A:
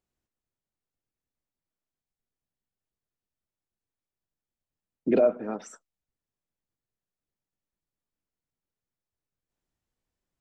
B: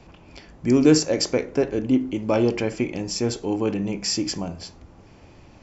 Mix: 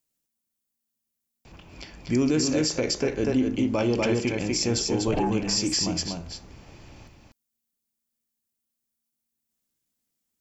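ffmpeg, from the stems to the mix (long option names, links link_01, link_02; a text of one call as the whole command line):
ffmpeg -i stem1.wav -i stem2.wav -filter_complex "[0:a]aeval=exprs='val(0)*sin(2*PI*230*n/s)':channel_layout=same,volume=-4dB[link_01];[1:a]lowpass=frequency=2500:poles=1,adelay=1450,volume=-4dB,asplit=2[link_02][link_03];[link_03]volume=-4dB,aecho=0:1:244:1[link_04];[link_01][link_02][link_04]amix=inputs=3:normalize=0,lowshelf=frequency=230:gain=5.5,crystalizer=i=7:c=0,alimiter=limit=-15dB:level=0:latency=1:release=76" out.wav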